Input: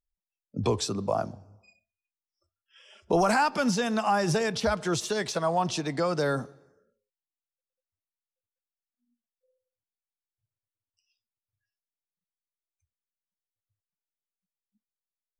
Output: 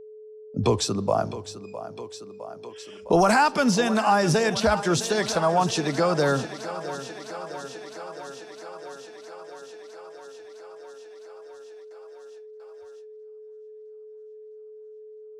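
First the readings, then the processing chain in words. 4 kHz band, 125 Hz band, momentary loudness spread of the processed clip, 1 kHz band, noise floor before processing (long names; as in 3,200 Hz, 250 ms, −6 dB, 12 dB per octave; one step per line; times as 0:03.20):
+5.0 dB, +4.5 dB, 21 LU, +5.0 dB, below −85 dBFS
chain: feedback echo with a high-pass in the loop 659 ms, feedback 75%, high-pass 170 Hz, level −13 dB
noise gate with hold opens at −53 dBFS
steady tone 430 Hz −46 dBFS
level +4.5 dB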